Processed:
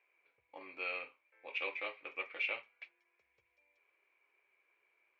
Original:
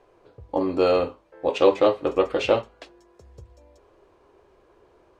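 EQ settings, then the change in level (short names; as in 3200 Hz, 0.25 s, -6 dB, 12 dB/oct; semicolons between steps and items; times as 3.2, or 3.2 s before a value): band-pass 2300 Hz, Q 16; air absorption 81 m; +8.0 dB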